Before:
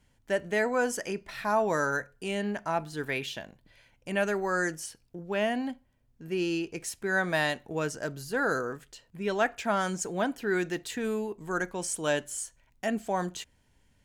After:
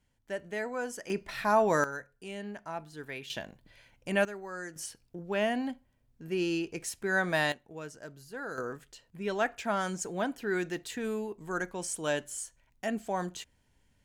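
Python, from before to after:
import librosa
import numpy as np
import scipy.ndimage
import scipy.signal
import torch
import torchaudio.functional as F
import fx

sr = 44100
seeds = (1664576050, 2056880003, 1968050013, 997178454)

y = fx.gain(x, sr, db=fx.steps((0.0, -8.0), (1.1, 1.5), (1.84, -9.0), (3.3, 1.0), (4.25, -12.0), (4.76, -1.0), (7.52, -11.5), (8.58, -3.0)))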